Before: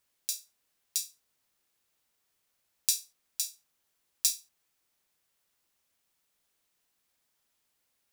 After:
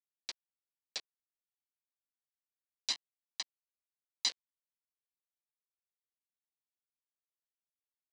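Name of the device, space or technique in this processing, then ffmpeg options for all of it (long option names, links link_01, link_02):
hand-held game console: -filter_complex "[0:a]acrusher=bits=3:mix=0:aa=0.000001,highpass=410,equalizer=frequency=830:width_type=q:width=4:gain=-7,equalizer=frequency=1300:width_type=q:width=4:gain=-9,equalizer=frequency=4200:width_type=q:width=4:gain=7,lowpass=frequency=5200:width=0.5412,lowpass=frequency=5200:width=1.3066,asettb=1/sr,asplit=3[link_01][link_02][link_03];[link_01]atrim=end=2.904[link_04];[link_02]atrim=start=2.9:end=4.29,asetpts=PTS-STARTPTS,afade=type=in:duration=0.004:curve=qsin,afade=type=out:start_time=1.386:duration=0.004:curve=qsin,aecho=1:1:1:0.87,atrim=end_sample=61299[link_05];[link_03]atrim=start=4.286[link_06];[link_04][link_05]acrossfade=duration=0.004:curve1=hsin:curve2=qsin[link_07];[link_07][link_06]acrossfade=duration=0.004:curve1=qsin:curve2=hsin,volume=-4.5dB"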